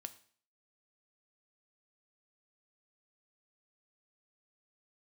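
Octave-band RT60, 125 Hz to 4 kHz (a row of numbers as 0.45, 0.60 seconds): 0.50, 0.50, 0.50, 0.50, 0.50, 0.50 seconds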